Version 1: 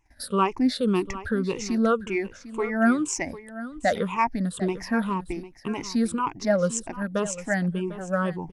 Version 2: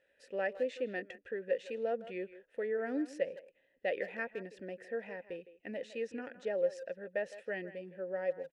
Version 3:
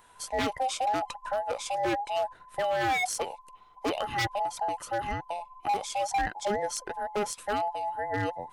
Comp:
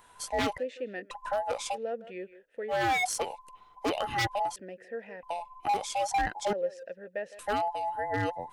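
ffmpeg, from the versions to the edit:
ffmpeg -i take0.wav -i take1.wav -i take2.wav -filter_complex "[1:a]asplit=4[link_01][link_02][link_03][link_04];[2:a]asplit=5[link_05][link_06][link_07][link_08][link_09];[link_05]atrim=end=0.582[link_10];[link_01]atrim=start=0.578:end=1.112[link_11];[link_06]atrim=start=1.108:end=1.78[link_12];[link_02]atrim=start=1.72:end=2.74[link_13];[link_07]atrim=start=2.68:end=4.562[link_14];[link_03]atrim=start=4.558:end=5.232[link_15];[link_08]atrim=start=5.228:end=6.532[link_16];[link_04]atrim=start=6.528:end=7.392[link_17];[link_09]atrim=start=7.388[link_18];[link_10][link_11]acrossfade=duration=0.004:curve1=hsin:curve2=hsin[link_19];[link_19][link_12]acrossfade=duration=0.004:curve1=hsin:curve2=hsin[link_20];[link_20][link_13]acrossfade=duration=0.06:curve1=tri:curve2=tri[link_21];[link_21][link_14]acrossfade=duration=0.06:curve1=tri:curve2=tri[link_22];[link_22][link_15]acrossfade=duration=0.004:curve1=hsin:curve2=hsin[link_23];[link_23][link_16]acrossfade=duration=0.004:curve1=hsin:curve2=hsin[link_24];[link_24][link_17]acrossfade=duration=0.004:curve1=hsin:curve2=hsin[link_25];[link_25][link_18]acrossfade=duration=0.004:curve1=hsin:curve2=hsin" out.wav

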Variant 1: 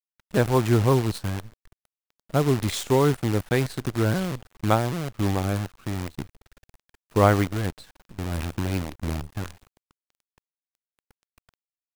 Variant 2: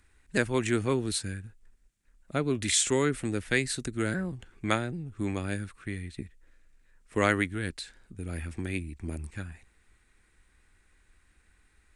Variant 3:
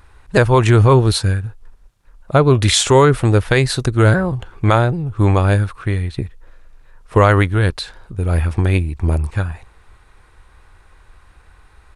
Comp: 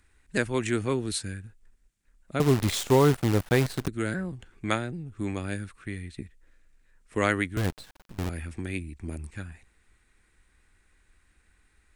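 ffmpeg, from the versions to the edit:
ffmpeg -i take0.wav -i take1.wav -filter_complex "[0:a]asplit=2[link_01][link_02];[1:a]asplit=3[link_03][link_04][link_05];[link_03]atrim=end=2.402[link_06];[link_01]atrim=start=2.398:end=3.882[link_07];[link_04]atrim=start=3.878:end=7.572[link_08];[link_02]atrim=start=7.568:end=8.292[link_09];[link_05]atrim=start=8.288[link_10];[link_06][link_07]acrossfade=duration=0.004:curve1=hsin:curve2=hsin[link_11];[link_11][link_08]acrossfade=duration=0.004:curve1=hsin:curve2=hsin[link_12];[link_12][link_09]acrossfade=duration=0.004:curve1=hsin:curve2=hsin[link_13];[link_13][link_10]acrossfade=duration=0.004:curve1=hsin:curve2=hsin" out.wav

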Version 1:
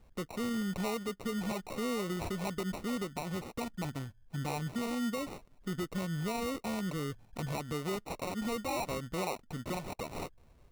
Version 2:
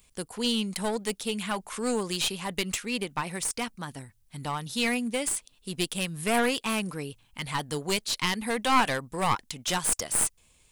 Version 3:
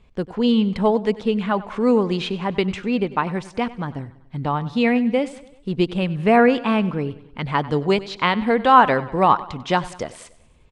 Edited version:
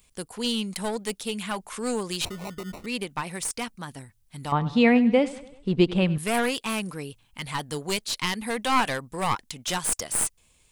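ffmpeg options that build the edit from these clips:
ffmpeg -i take0.wav -i take1.wav -i take2.wav -filter_complex "[1:a]asplit=3[link_01][link_02][link_03];[link_01]atrim=end=2.252[link_04];[0:a]atrim=start=2.248:end=2.862[link_05];[link_02]atrim=start=2.858:end=4.522[link_06];[2:a]atrim=start=4.518:end=6.182[link_07];[link_03]atrim=start=6.178[link_08];[link_04][link_05]acrossfade=duration=0.004:curve1=hsin:curve2=hsin[link_09];[link_09][link_06]acrossfade=duration=0.004:curve1=hsin:curve2=hsin[link_10];[link_10][link_07]acrossfade=duration=0.004:curve1=hsin:curve2=hsin[link_11];[link_11][link_08]acrossfade=duration=0.004:curve1=hsin:curve2=hsin" out.wav

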